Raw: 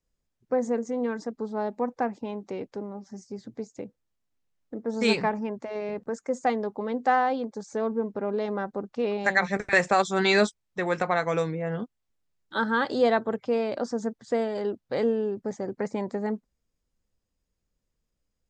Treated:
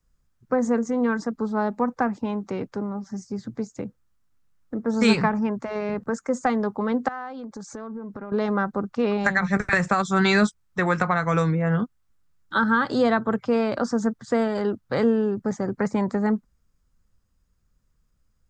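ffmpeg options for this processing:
ffmpeg -i in.wav -filter_complex "[0:a]asettb=1/sr,asplit=3[link_01][link_02][link_03];[link_01]atrim=end=7.084[link_04];[link_02]atrim=start=7.08:end=8.32,asetpts=PTS-STARTPTS,afade=type=in:duration=0.004:curve=qsin,afade=type=out:start_time=1.236:duration=0.004:curve=qsin,acompressor=threshold=-39dB:ratio=5:attack=3.2:release=140:knee=1:detection=peak[link_05];[link_03]atrim=start=8.316[link_06];[link_04][link_05]acrossfade=duration=0.004:curve1=hsin:curve2=qsin[link_07];[link_07][link_06]acrossfade=duration=0.004:curve1=qsin:curve2=hsin,equalizer=frequency=1300:width_type=o:width=1.1:gain=12.5,acrossover=split=250[link_08][link_09];[link_09]acompressor=threshold=-19dB:ratio=6[link_10];[link_08][link_10]amix=inputs=2:normalize=0,bass=frequency=250:gain=13,treble=frequency=4000:gain=6" out.wav

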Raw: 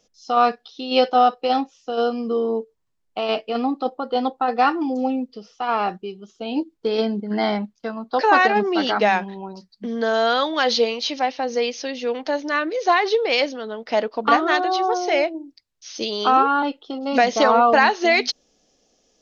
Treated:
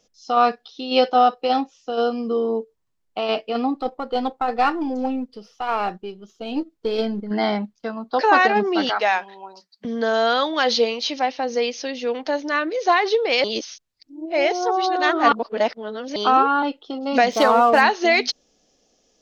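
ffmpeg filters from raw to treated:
ffmpeg -i in.wav -filter_complex "[0:a]asettb=1/sr,asplit=3[link_01][link_02][link_03];[link_01]atrim=end=3.754[link_04];[link_02]atrim=start=3.75:end=7.31,asetpts=PTS-STARTPTS,afade=type=in:duration=0.004:curve=qsin,afade=type=out:start_time=3.556:duration=0.004:curve=qsin,aeval=exprs='if(lt(val(0),0),0.708*val(0),val(0))':channel_layout=same[link_05];[link_03]atrim=start=7.306[link_06];[link_04][link_05]acrossfade=duration=0.004:curve1=hsin:curve2=qsin[link_07];[link_07][link_06]acrossfade=duration=0.004:curve1=qsin:curve2=hsin,asettb=1/sr,asplit=3[link_08][link_09][link_10];[link_08]atrim=end=8.894[link_11];[link_09]atrim=start=8.89:end=9.85,asetpts=PTS-STARTPTS,afade=type=in:duration=0.004:curve=qsin,afade=type=out:start_time=0.956:duration=0.004:curve=qsin,highpass=610[link_12];[link_10]atrim=start=9.846[link_13];[link_11][link_12]acrossfade=duration=0.004:curve1=hsin:curve2=qsin[link_14];[link_14][link_13]acrossfade=duration=0.004:curve1=qsin:curve2=hsin,asettb=1/sr,asplit=3[link_15][link_16][link_17];[link_15]atrim=end=17.314[link_18];[link_16]atrim=start=17.31:end=17.81,asetpts=PTS-STARTPTS,afade=type=in:duration=0.004:curve=qsin,afade=type=out:start_time=0.496:duration=0.004:curve=qsin,adynamicsmooth=sensitivity=6.5:basefreq=2900[link_19];[link_17]atrim=start=17.806[link_20];[link_18][link_19]acrossfade=duration=0.004:curve1=hsin:curve2=qsin[link_21];[link_21][link_20]acrossfade=duration=0.004:curve1=qsin:curve2=hsin,asplit=3[link_22][link_23][link_24];[link_22]atrim=end=13.442[link_25];[link_23]atrim=start=13.438:end=16.162,asetpts=PTS-STARTPTS,areverse[link_26];[link_24]atrim=start=16.158[link_27];[link_25][link_26]acrossfade=duration=0.004:curve1=hsin:curve2=hsin[link_28];[link_28][link_27]acrossfade=duration=0.004:curve1=hsin:curve2=hsin" out.wav

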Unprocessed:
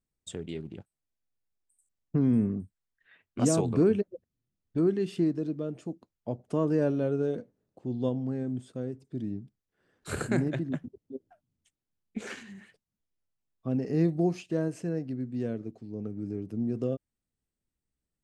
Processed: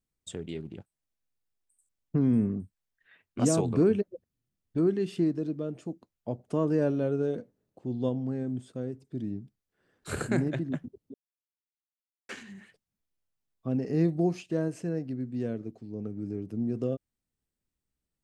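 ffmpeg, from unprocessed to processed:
ffmpeg -i in.wav -filter_complex "[0:a]asplit=3[link_01][link_02][link_03];[link_01]atrim=end=11.14,asetpts=PTS-STARTPTS,afade=type=out:start_time=11.136:duration=0.004:curve=hsin[link_04];[link_02]atrim=start=11.14:end=12.29,asetpts=PTS-STARTPTS,volume=0[link_05];[link_03]atrim=start=12.29,asetpts=PTS-STARTPTS,afade=type=in:duration=0.004:curve=hsin[link_06];[link_04][link_05][link_06]concat=n=3:v=0:a=1" out.wav

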